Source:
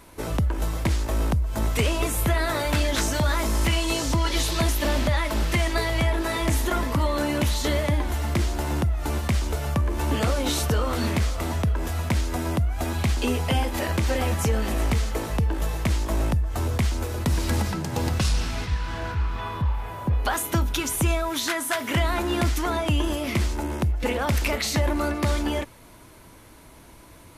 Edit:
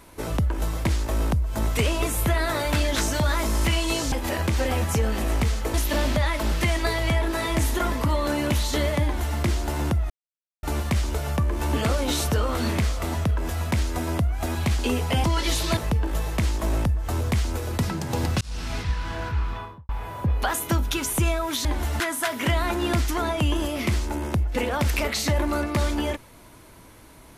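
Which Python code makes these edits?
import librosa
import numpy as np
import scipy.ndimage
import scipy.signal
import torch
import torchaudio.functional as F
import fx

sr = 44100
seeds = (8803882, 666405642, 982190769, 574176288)

y = fx.studio_fade_out(x, sr, start_s=19.3, length_s=0.42)
y = fx.edit(y, sr, fx.swap(start_s=4.12, length_s=0.53, other_s=13.62, other_length_s=1.62),
    fx.duplicate(start_s=7.94, length_s=0.35, to_s=21.48),
    fx.insert_silence(at_s=9.01, length_s=0.53),
    fx.cut(start_s=17.3, length_s=0.36),
    fx.fade_in_span(start_s=18.24, length_s=0.32), tone=tone)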